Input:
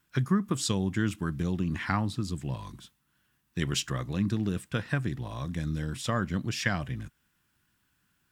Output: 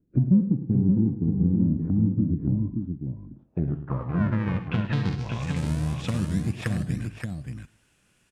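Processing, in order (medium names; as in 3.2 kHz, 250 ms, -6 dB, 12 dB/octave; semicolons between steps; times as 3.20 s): rattle on loud lows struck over -32 dBFS, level -35 dBFS; low-pass that closes with the level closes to 330 Hz, closed at -25.5 dBFS; fifteen-band graphic EQ 400 Hz -3 dB, 2.5 kHz +10 dB, 6.3 kHz +5 dB; in parallel at -3.5 dB: decimation with a swept rate 42×, swing 160% 0.25 Hz; on the sum: low-pass sweep 280 Hz -> 9.5 kHz, 2.90–5.68 s; multi-tap echo 66/106/163/576 ms -13.5/-12/-19.5/-5 dB; on a send at -21 dB: reverberation RT60 0.60 s, pre-delay 46 ms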